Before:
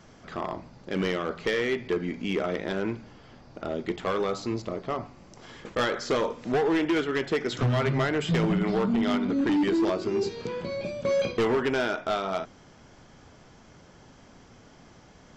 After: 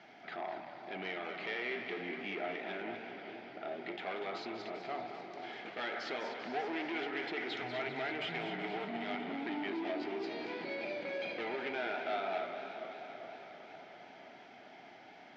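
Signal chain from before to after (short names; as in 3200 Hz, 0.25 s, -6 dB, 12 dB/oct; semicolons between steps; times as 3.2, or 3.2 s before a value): notch 1100 Hz, Q 10; in parallel at -3 dB: negative-ratio compressor -30 dBFS; on the sum: limiter -20 dBFS, peak gain reduction 7 dB; soft clip -24.5 dBFS, distortion -15 dB; speaker cabinet 350–4100 Hz, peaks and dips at 510 Hz -10 dB, 730 Hz +9 dB, 1100 Hz -7 dB, 2200 Hz +7 dB; on a send: split-band echo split 790 Hz, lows 0.461 s, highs 0.242 s, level -9 dB; on the sum: warbling echo 0.196 s, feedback 80%, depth 177 cents, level -12 dB; gain -7.5 dB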